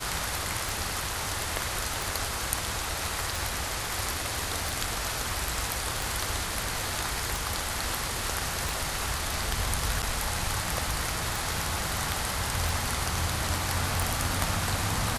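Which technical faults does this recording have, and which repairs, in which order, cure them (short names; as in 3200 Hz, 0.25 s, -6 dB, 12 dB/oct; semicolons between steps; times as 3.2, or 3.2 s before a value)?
tick 45 rpm
10.02–10.03 gap 7.7 ms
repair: de-click; interpolate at 10.02, 7.7 ms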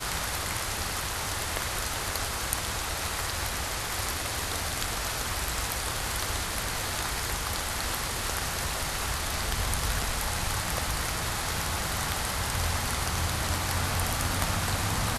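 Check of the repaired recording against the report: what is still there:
none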